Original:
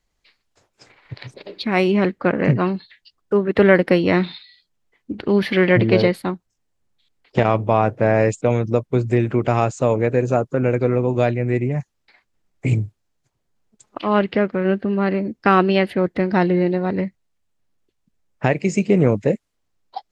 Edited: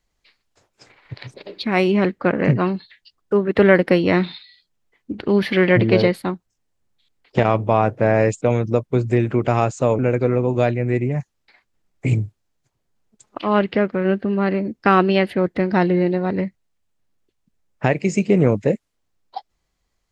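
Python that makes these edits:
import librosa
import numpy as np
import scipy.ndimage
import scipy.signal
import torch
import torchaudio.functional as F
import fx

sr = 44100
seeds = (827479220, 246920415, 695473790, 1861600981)

y = fx.edit(x, sr, fx.cut(start_s=9.99, length_s=0.6), tone=tone)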